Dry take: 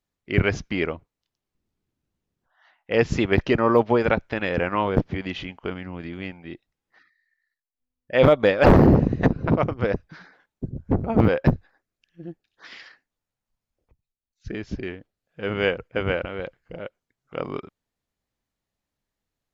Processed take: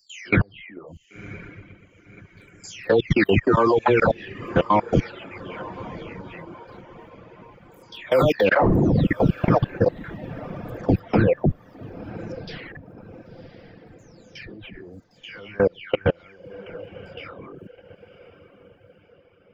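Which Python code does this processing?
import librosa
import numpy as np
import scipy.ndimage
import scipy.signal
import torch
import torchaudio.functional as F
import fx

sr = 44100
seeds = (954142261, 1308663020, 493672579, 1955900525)

y = fx.spec_delay(x, sr, highs='early', ms=506)
y = fx.high_shelf(y, sr, hz=5800.0, db=6.5)
y = fx.level_steps(y, sr, step_db=24)
y = fx.echo_diffused(y, sr, ms=1061, feedback_pct=44, wet_db=-14.0)
y = fx.dereverb_blind(y, sr, rt60_s=0.83)
y = F.gain(torch.from_numpy(y), 8.5).numpy()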